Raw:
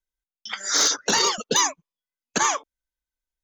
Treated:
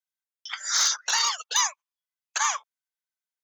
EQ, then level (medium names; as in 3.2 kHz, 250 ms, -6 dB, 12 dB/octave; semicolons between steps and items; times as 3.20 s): high-pass 880 Hz 24 dB/octave; -2.5 dB